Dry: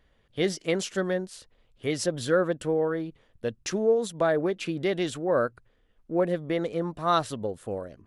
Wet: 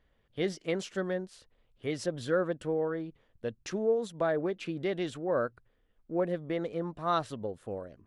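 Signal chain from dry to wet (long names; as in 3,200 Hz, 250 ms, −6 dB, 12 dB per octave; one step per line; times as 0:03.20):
high-shelf EQ 5,700 Hz −9.5 dB
level −5 dB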